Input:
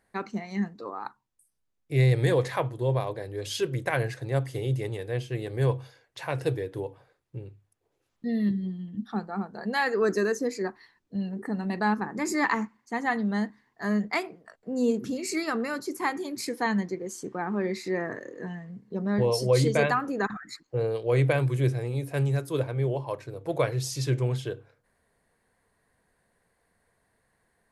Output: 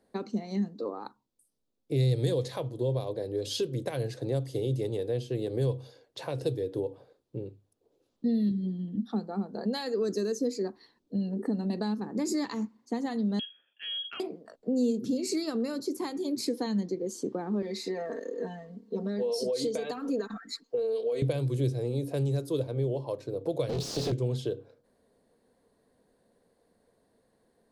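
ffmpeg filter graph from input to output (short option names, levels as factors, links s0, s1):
-filter_complex "[0:a]asettb=1/sr,asplit=3[s0][s1][s2];[s0]atrim=end=13.394[s3];[s1]atrim=start=13.39:end=14.2,asetpts=PTS-STARTPTS,afade=t=in:d=0.004:c=qsin,afade=t=out:st=0.806:d=0.004:c=qsin,lowpass=f=3000:t=q:w=0.5098,lowpass=f=3000:t=q:w=0.6013,lowpass=f=3000:t=q:w=0.9,lowpass=f=3000:t=q:w=2.563,afreqshift=-3500,acompressor=threshold=0.0251:ratio=4:attack=3.2:release=140:knee=1:detection=peak[s4];[s2]atrim=start=14.196[s5];[s3][s4]acrossfade=d=0.004:c1=hsin:c2=qsin[s6];[s6][s5]acrossfade=d=0.004:c1=qsin:c2=hsin,asettb=1/sr,asplit=3[s7][s8][s9];[s7]atrim=end=17.624[s10];[s8]atrim=start=17.62:end=21.22,asetpts=PTS-STARTPTS,afade=t=in:d=0.004:c=qsin,afade=t=out:st=3.596:d=0.004:c=qsin,equalizer=f=120:w=0.52:g=-14,aecho=1:1:4.4:0.9,atrim=end_sample=158760,acompressor=threshold=0.0398:ratio=6:attack=3.2:release=140:knee=1:detection=peak[s11];[s9]atrim=start=21.216[s12];[s10][s11]acrossfade=d=0.004:c1=hsin:c2=qsin[s13];[s13][s12]acrossfade=d=0.004:c1=qsin:c2=hsin,asettb=1/sr,asplit=3[s14][s15][s16];[s14]atrim=end=23.694[s17];[s15]atrim=start=23.69:end=24.12,asetpts=PTS-STARTPTS,afade=t=in:d=0.004:c=qsin,afade=t=out:st=0.426:d=0.004:c=qsin,highpass=47,asplit=2[s18][s19];[s19]highpass=f=720:p=1,volume=70.8,asoftclip=type=tanh:threshold=0.158[s20];[s18][s20]amix=inputs=2:normalize=0,lowpass=f=1500:p=1,volume=0.501,tremolo=f=300:d=0.889[s21];[s16]atrim=start=24.116[s22];[s17][s21]acrossfade=d=0.004:c1=hsin:c2=qsin[s23];[s23][s22]acrossfade=d=0.004:c1=qsin:c2=hsin,acrossover=split=140|3000[s24][s25][s26];[s25]acompressor=threshold=0.0178:ratio=6[s27];[s24][s27][s26]amix=inputs=3:normalize=0,equalizer=f=250:t=o:w=1:g=11,equalizer=f=500:t=o:w=1:g=10,equalizer=f=2000:t=o:w=1:g=-7,equalizer=f=4000:t=o:w=1:g=7,volume=0.631"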